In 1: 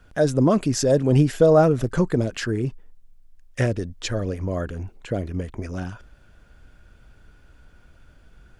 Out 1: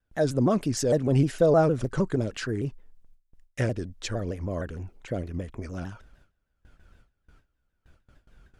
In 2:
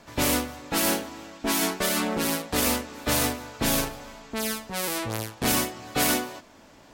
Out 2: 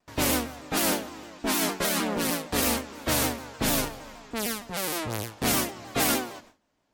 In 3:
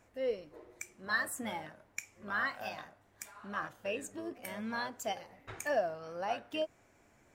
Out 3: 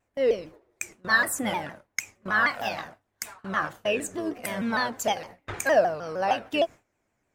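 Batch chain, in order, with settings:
gate with hold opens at -40 dBFS; shaped vibrato saw down 6.5 Hz, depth 160 cents; match loudness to -27 LUFS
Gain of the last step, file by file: -5.0, -1.0, +11.0 dB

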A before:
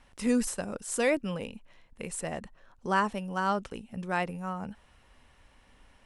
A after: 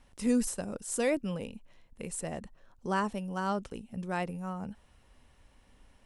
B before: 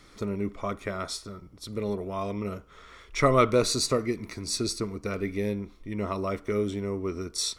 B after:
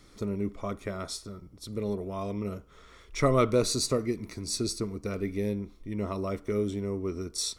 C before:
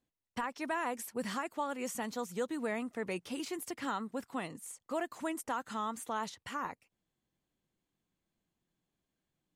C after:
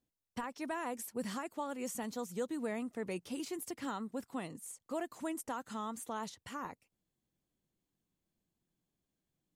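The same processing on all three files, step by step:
bell 1700 Hz -6 dB 2.8 oct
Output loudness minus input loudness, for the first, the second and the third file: -2.5, -2.0, -2.5 LU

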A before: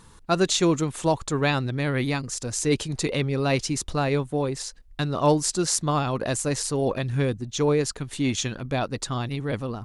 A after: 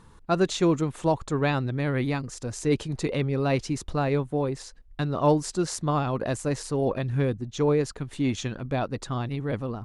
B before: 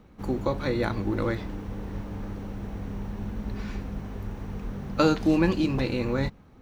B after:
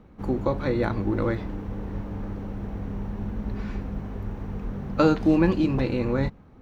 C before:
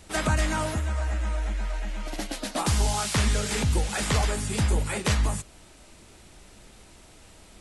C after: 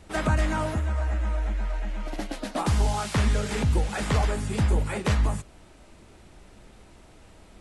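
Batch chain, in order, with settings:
high shelf 2900 Hz -10.5 dB; match loudness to -27 LUFS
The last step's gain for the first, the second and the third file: -0.5, +2.5, +1.5 dB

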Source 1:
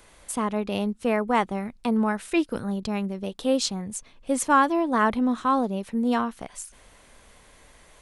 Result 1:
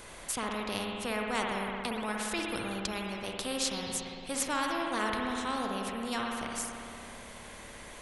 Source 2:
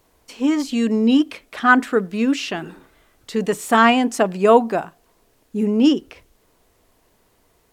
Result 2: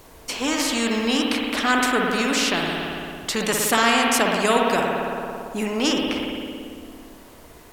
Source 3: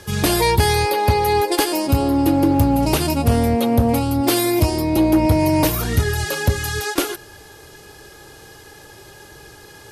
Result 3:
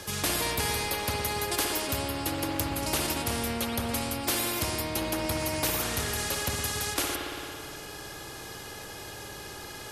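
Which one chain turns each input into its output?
spring tank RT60 1.6 s, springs 56 ms, chirp 75 ms, DRR 2.5 dB; spectral compressor 2:1; gain -7.5 dB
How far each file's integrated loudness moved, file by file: -8.5, -3.0, -11.5 LU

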